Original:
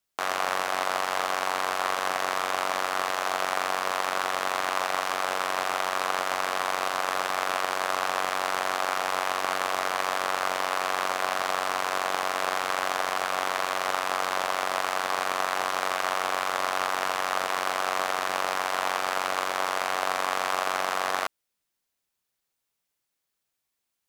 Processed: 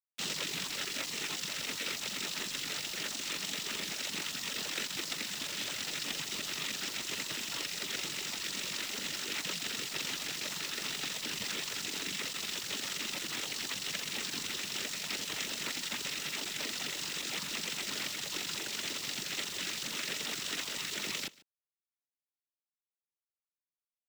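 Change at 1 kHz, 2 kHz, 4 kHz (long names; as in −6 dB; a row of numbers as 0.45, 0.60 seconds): −22.5, −10.0, −1.0 decibels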